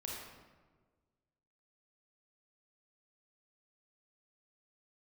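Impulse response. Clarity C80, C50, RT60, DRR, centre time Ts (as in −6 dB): 2.0 dB, −0.5 dB, 1.4 s, −3.5 dB, 81 ms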